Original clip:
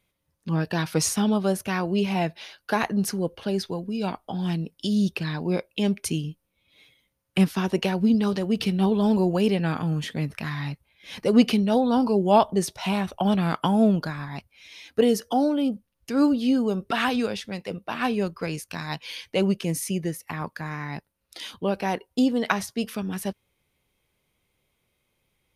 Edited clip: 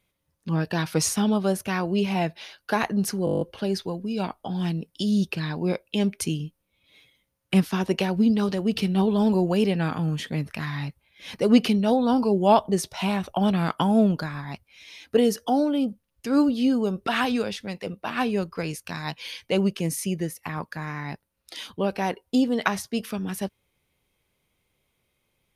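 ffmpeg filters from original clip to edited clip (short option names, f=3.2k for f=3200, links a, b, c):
-filter_complex "[0:a]asplit=9[a][b][c][d][e][f][g][h][i];[a]atrim=end=3.272[j];[b]atrim=start=3.248:end=3.272[k];[c]atrim=start=3.248:end=3.272[l];[d]atrim=start=3.248:end=3.272[m];[e]atrim=start=3.248:end=3.272[n];[f]atrim=start=3.248:end=3.272[o];[g]atrim=start=3.248:end=3.272[p];[h]atrim=start=3.248:end=3.272[q];[i]atrim=start=3.248[r];[j][k]acrossfade=d=0.004:c1=hsin:c2=hsin[s];[s][l]acrossfade=d=0.004:c1=hsin:c2=hsin[t];[t][m]acrossfade=d=0.004:c1=hsin:c2=hsin[u];[u][n]acrossfade=d=0.004:c1=hsin:c2=hsin[v];[v][o]acrossfade=d=0.004:c1=hsin:c2=hsin[w];[w][p]acrossfade=d=0.004:c1=hsin:c2=hsin[x];[x][q]acrossfade=d=0.004:c1=hsin:c2=hsin[y];[y][r]acrossfade=d=0.004:c1=hsin:c2=hsin"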